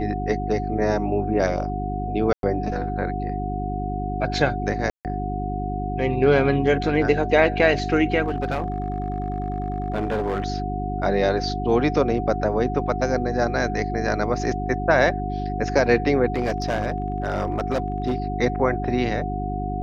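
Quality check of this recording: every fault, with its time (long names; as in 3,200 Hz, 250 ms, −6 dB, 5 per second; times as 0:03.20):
mains hum 50 Hz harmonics 8 −28 dBFS
whistle 730 Hz −29 dBFS
0:02.33–0:02.43: drop-out 102 ms
0:04.90–0:05.05: drop-out 148 ms
0:08.24–0:10.44: clipping −19.5 dBFS
0:16.32–0:18.18: clipping −18 dBFS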